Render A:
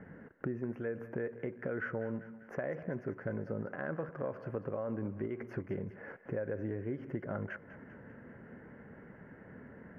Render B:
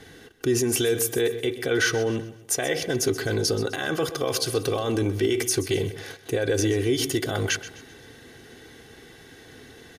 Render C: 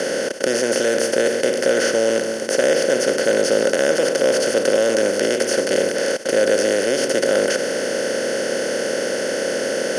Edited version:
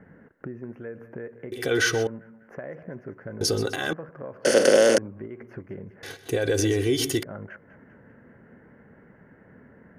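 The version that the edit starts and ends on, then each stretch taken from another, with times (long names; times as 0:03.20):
A
0:01.52–0:02.07: punch in from B
0:03.41–0:03.93: punch in from B
0:04.45–0:04.98: punch in from C
0:06.03–0:07.23: punch in from B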